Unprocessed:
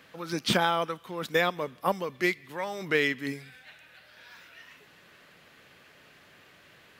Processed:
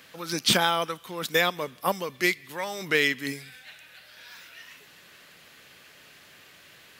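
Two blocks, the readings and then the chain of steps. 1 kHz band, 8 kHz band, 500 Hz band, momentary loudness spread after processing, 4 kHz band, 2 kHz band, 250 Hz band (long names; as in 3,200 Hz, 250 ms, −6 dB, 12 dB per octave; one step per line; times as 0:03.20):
+1.0 dB, +9.5 dB, +0.5 dB, 22 LU, +6.5 dB, +3.0 dB, 0.0 dB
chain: high-shelf EQ 3,000 Hz +11 dB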